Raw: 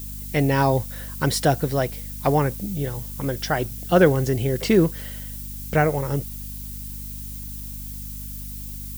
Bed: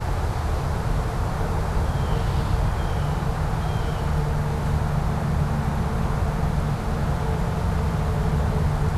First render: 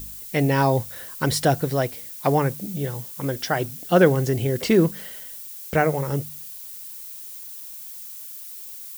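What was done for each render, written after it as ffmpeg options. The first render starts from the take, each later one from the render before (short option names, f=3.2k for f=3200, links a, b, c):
-af "bandreject=f=50:t=h:w=4,bandreject=f=100:t=h:w=4,bandreject=f=150:t=h:w=4,bandreject=f=200:t=h:w=4,bandreject=f=250:t=h:w=4"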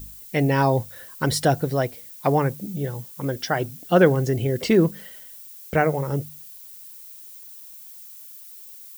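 -af "afftdn=nr=6:nf=-38"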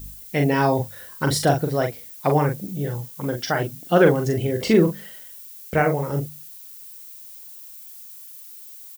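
-filter_complex "[0:a]asplit=2[a][b];[b]adelay=41,volume=-5dB[c];[a][c]amix=inputs=2:normalize=0"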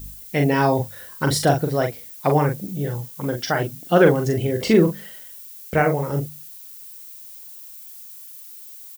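-af "volume=1dB"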